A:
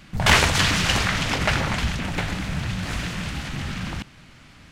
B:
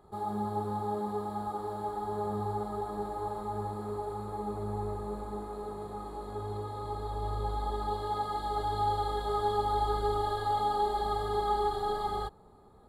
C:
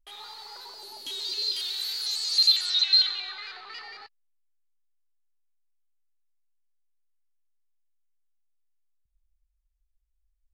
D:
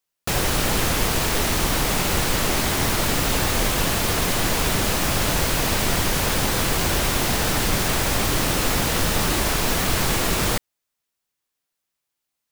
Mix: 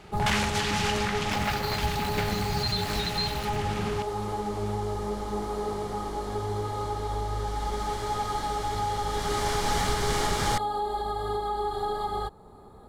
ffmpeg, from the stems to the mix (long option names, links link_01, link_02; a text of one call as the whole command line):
ffmpeg -i stem1.wav -i stem2.wav -i stem3.wav -i stem4.wav -filter_complex "[0:a]volume=-4dB[link_01];[1:a]volume=1.5dB[link_02];[2:a]highshelf=frequency=3600:gain=3.5,aeval=exprs='val(0)*gte(abs(val(0)),0.0422)':channel_layout=same,adelay=250,volume=-12dB[link_03];[3:a]lowpass=8200,bandreject=frequency=2600:width=6.5,volume=-3.5dB,afade=type=in:start_time=7.31:duration=0.64:silence=0.446684,afade=type=in:start_time=9.06:duration=0.72:silence=0.251189[link_04];[link_02][link_03]amix=inputs=2:normalize=0,acontrast=73,alimiter=limit=-21.5dB:level=0:latency=1:release=408,volume=0dB[link_05];[link_01][link_04]amix=inputs=2:normalize=0,equalizer=frequency=390:width_type=o:width=1.5:gain=-4,alimiter=limit=-17.5dB:level=0:latency=1:release=374,volume=0dB[link_06];[link_05][link_06]amix=inputs=2:normalize=0" out.wav